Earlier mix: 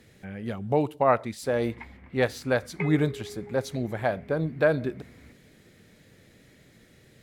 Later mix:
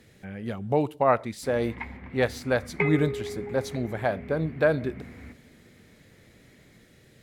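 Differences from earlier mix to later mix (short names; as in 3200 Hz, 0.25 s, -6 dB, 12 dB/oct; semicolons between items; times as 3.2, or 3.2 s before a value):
background +6.5 dB; reverb: on, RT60 1.5 s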